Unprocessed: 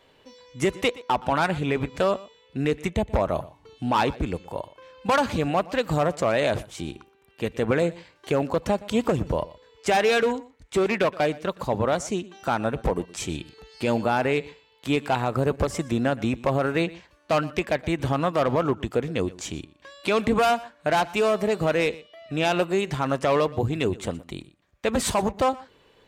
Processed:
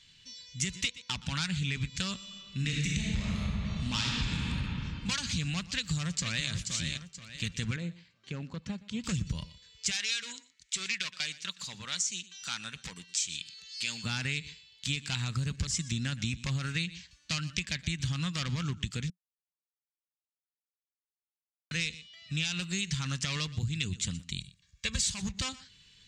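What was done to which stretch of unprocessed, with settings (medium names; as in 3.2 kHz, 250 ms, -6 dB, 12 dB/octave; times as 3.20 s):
2.16–4.39 s: reverb throw, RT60 2.9 s, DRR -4.5 dB
5.69–6.49 s: echo throw 480 ms, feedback 35%, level -8 dB
7.76–9.04 s: band-pass filter 470 Hz, Q 0.68
9.91–14.04 s: high-pass 1 kHz 6 dB/octave
19.10–21.71 s: mute
24.38–25.06 s: comb 1.8 ms, depth 70%
whole clip: FFT filter 180 Hz 0 dB, 330 Hz -20 dB, 660 Hz -29 dB, 1.7 kHz -5 dB, 4.3 kHz +9 dB, 7.2 kHz +11 dB, 12 kHz -11 dB; compression, threshold -28 dBFS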